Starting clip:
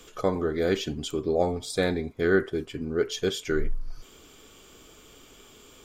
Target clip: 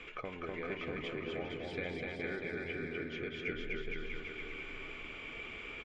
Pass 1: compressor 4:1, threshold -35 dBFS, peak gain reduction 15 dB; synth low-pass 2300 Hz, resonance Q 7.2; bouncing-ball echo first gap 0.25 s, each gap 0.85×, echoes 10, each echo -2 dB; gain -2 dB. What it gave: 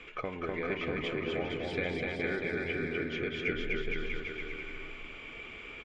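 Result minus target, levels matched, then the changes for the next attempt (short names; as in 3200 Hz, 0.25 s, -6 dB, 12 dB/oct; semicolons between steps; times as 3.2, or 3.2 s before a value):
compressor: peak gain reduction -6 dB
change: compressor 4:1, threshold -43 dBFS, peak gain reduction 21 dB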